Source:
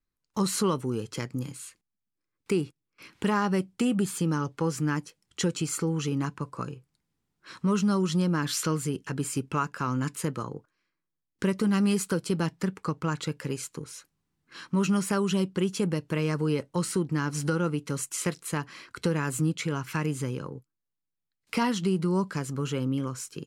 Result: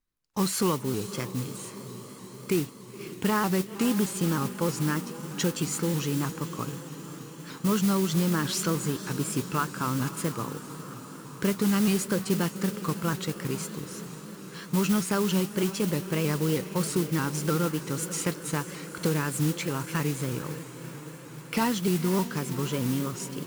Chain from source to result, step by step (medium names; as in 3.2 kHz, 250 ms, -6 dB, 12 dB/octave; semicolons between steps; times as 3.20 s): echo that smears into a reverb 515 ms, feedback 72%, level -13 dB; modulation noise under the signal 13 dB; vibrato with a chosen wave saw up 3.2 Hz, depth 100 cents